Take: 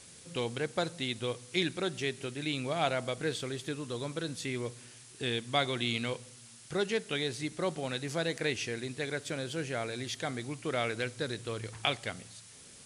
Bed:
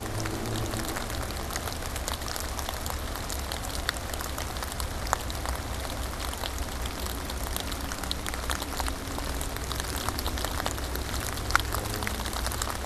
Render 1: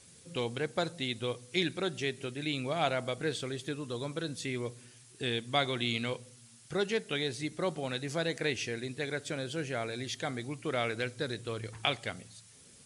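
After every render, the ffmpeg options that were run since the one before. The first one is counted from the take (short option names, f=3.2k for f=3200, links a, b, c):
-af "afftdn=nr=6:nf=-53"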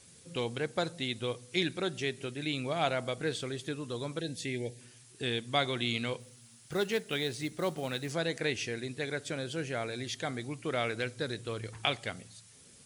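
-filter_complex "[0:a]asettb=1/sr,asplit=3[a][b][c];[a]atrim=end=4.204[d];[b]atrim=start=4.2:end=4.81,asetpts=PTS-STARTPTS,afade=t=in:d=0.004:c=qsin,afade=t=out:st=0.606:d=0.004:c=qsin,asuperstop=centerf=1200:order=20:qfactor=1.8[e];[c]atrim=start=4.806[f];[d][e]acrossfade=d=0.004:c1=hsin:c2=qsin[g];[g][f]acrossfade=d=0.004:c1=qsin:c2=hsin,asettb=1/sr,asplit=3[h][i][j];[h]atrim=end=6.204[k];[i]atrim=start=6.2:end=8.12,asetpts=PTS-STARTPTS,afade=t=in:d=0.004:c=qsin,afade=t=out:st=1.916:d=0.004:c=qsin,acrusher=bits=5:mode=log:mix=0:aa=0.000001[l];[j]atrim=start=8.116[m];[k][l]acrossfade=d=0.004:c1=hsin:c2=qsin[n];[n][m]acrossfade=d=0.004:c1=qsin:c2=hsin"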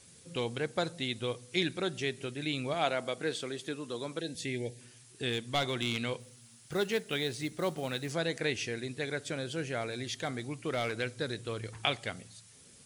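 -filter_complex "[0:a]asettb=1/sr,asplit=3[a][b][c];[a]atrim=end=2.744[d];[b]atrim=start=2.74:end=4.35,asetpts=PTS-STARTPTS,afade=t=in:d=0.004:c=qsin,afade=t=out:st=1.606:d=0.004:c=qsin,highpass=190[e];[c]atrim=start=4.346[f];[d][e]acrossfade=d=0.004:c1=hsin:c2=qsin[g];[g][f]acrossfade=d=0.004:c1=qsin:c2=hsin,asettb=1/sr,asplit=3[h][i][j];[h]atrim=end=5.294[k];[i]atrim=start=5.29:end=5.98,asetpts=PTS-STARTPTS,afade=t=in:d=0.004:c=qsin,afade=t=out:st=0.686:d=0.004:c=qsin,aeval=exprs='clip(val(0),-1,0.0501)':c=same[l];[j]atrim=start=5.976[m];[k][l]acrossfade=d=0.004:c1=hsin:c2=qsin[n];[n][m]acrossfade=d=0.004:c1=qsin:c2=hsin,asettb=1/sr,asplit=3[o][p][q];[o]atrim=end=9.814[r];[p]atrim=start=9.81:end=11,asetpts=PTS-STARTPTS,afade=t=in:d=0.004:c=qsin,afade=t=out:st=1.186:d=0.004:c=qsin,volume=26.5dB,asoftclip=hard,volume=-26.5dB[s];[q]atrim=start=10.996[t];[r][s]acrossfade=d=0.004:c1=hsin:c2=qsin[u];[u][t]acrossfade=d=0.004:c1=qsin:c2=hsin"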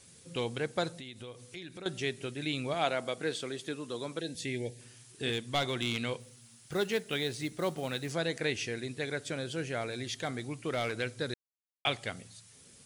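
-filter_complex "[0:a]asettb=1/sr,asplit=3[a][b][c];[a]atrim=end=0.994[d];[b]atrim=start=0.99:end=1.86,asetpts=PTS-STARTPTS,afade=t=in:d=0.004:c=qsin,afade=t=out:st=0.866:d=0.004:c=qsin,acompressor=threshold=-43dB:ratio=4:attack=3.2:release=140:knee=1:detection=peak[e];[c]atrim=start=1.856[f];[d][e]acrossfade=d=0.004:c1=hsin:c2=qsin[g];[g][f]acrossfade=d=0.004:c1=qsin:c2=hsin,asettb=1/sr,asplit=3[h][i][j];[h]atrim=end=4.754[k];[i]atrim=start=4.75:end=5.31,asetpts=PTS-STARTPTS,afade=t=in:d=0.004:c=qsin,afade=t=out:st=0.556:d=0.004:c=qsin,asplit=2[l][m];[m]adelay=43,volume=-5dB[n];[l][n]amix=inputs=2:normalize=0,atrim=end_sample=24696[o];[j]atrim=start=5.306[p];[k][o]acrossfade=d=0.004:c1=hsin:c2=qsin[q];[q][p]acrossfade=d=0.004:c1=qsin:c2=hsin,asplit=3[r][s][t];[r]atrim=end=11.34,asetpts=PTS-STARTPTS,afade=t=out:st=11.336:d=0.004:c=hsin[u];[s]atrim=start=11.34:end=11.85,asetpts=PTS-STARTPTS,volume=0[v];[t]atrim=start=11.85,asetpts=PTS-STARTPTS,afade=t=in:d=0.004:c=hsin[w];[u][v][w]concat=n=3:v=0:a=1"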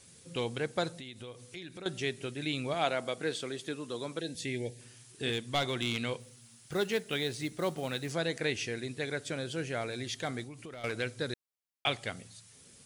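-filter_complex "[0:a]asettb=1/sr,asplit=3[a][b][c];[a]atrim=end=10.434[d];[b]atrim=start=10.43:end=10.84,asetpts=PTS-STARTPTS,afade=t=in:d=0.004:c=qsin,afade=t=out:st=0.406:d=0.004:c=qsin,acompressor=threshold=-42dB:ratio=8:attack=3.2:release=140:knee=1:detection=peak[e];[c]atrim=start=10.836[f];[d][e]acrossfade=d=0.004:c1=hsin:c2=qsin[g];[g][f]acrossfade=d=0.004:c1=qsin:c2=hsin"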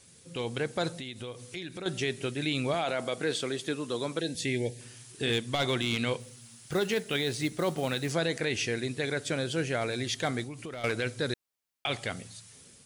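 -af "alimiter=level_in=0.5dB:limit=-24dB:level=0:latency=1:release=15,volume=-0.5dB,dynaudnorm=f=220:g=5:m=5.5dB"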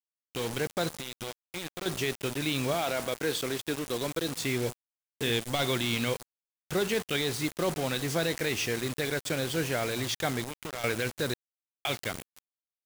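-af "acrusher=bits=5:mix=0:aa=0.000001"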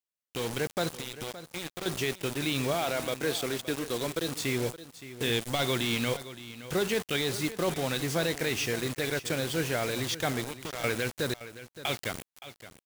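-af "aecho=1:1:569:0.188"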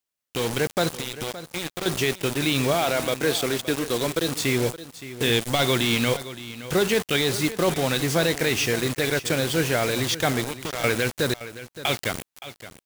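-af "volume=7dB"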